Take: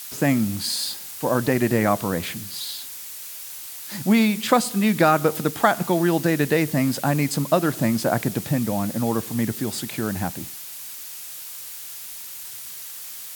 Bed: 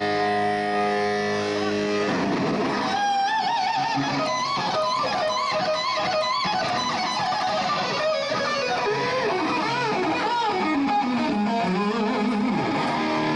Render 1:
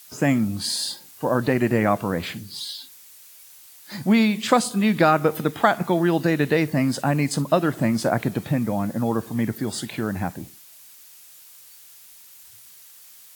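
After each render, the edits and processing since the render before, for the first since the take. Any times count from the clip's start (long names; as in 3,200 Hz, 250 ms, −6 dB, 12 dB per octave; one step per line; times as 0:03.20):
noise reduction from a noise print 11 dB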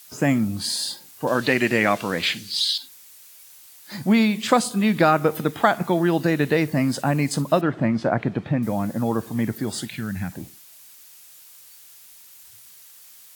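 0:01.27–0:02.78: meter weighting curve D
0:07.61–0:08.63: low-pass filter 2,900 Hz
0:09.88–0:10.32: flat-topped bell 590 Hz −12 dB 2.3 octaves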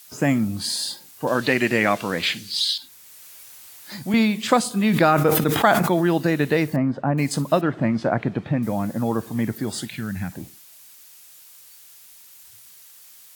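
0:02.74–0:04.14: multiband upward and downward compressor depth 40%
0:04.78–0:06.18: level that may fall only so fast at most 38 dB per second
0:06.76–0:07.18: low-pass filter 1,300 Hz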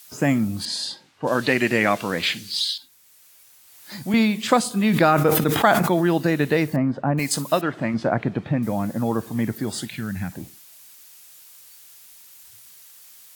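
0:00.65–0:01.93: low-pass that shuts in the quiet parts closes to 2,300 Hz, open at −18 dBFS
0:02.54–0:03.99: duck −8 dB, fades 0.34 s
0:07.19–0:07.94: spectral tilt +2 dB per octave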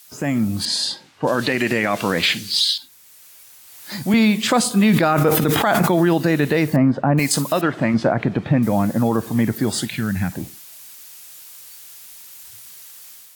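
brickwall limiter −14 dBFS, peak gain reduction 11.5 dB
automatic gain control gain up to 6.5 dB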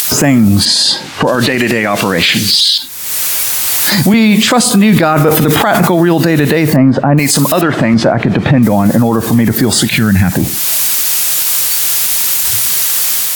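upward compression, threshold −19 dBFS
boost into a limiter +18.5 dB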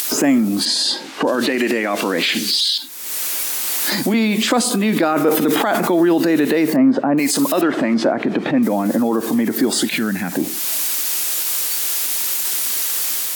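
four-pole ladder high-pass 230 Hz, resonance 40%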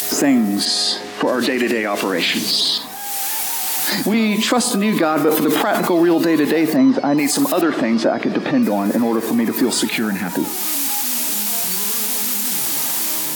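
mix in bed −10.5 dB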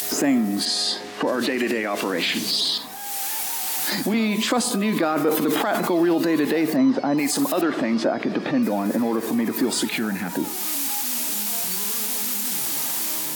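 level −5 dB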